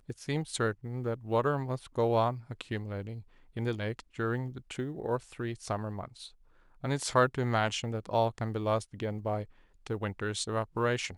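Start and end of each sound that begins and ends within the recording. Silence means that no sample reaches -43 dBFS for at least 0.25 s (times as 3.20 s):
3.56–6.27 s
6.84–9.45 s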